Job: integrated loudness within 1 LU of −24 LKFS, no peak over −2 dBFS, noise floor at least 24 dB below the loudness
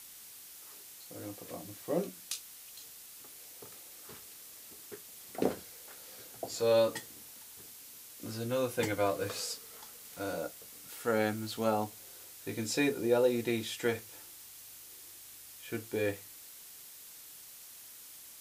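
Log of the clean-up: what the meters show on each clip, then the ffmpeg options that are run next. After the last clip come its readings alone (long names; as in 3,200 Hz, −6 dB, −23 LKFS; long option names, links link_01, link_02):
background noise floor −52 dBFS; target noise floor −58 dBFS; integrated loudness −34.0 LKFS; sample peak −15.5 dBFS; target loudness −24.0 LKFS
→ -af "afftdn=noise_reduction=6:noise_floor=-52"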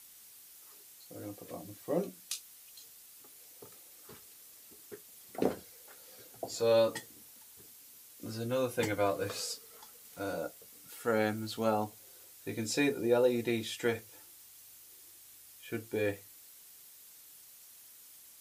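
background noise floor −56 dBFS; target noise floor −58 dBFS
→ -af "afftdn=noise_reduction=6:noise_floor=-56"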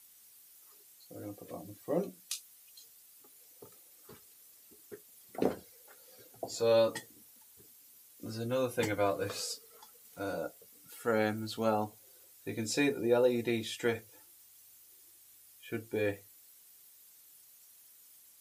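background noise floor −60 dBFS; integrated loudness −34.0 LKFS; sample peak −15.5 dBFS; target loudness −24.0 LKFS
→ -af "volume=10dB"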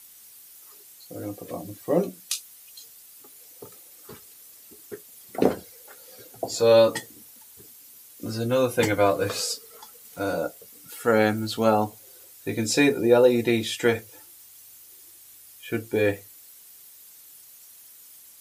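integrated loudness −24.0 LKFS; sample peak −5.5 dBFS; background noise floor −50 dBFS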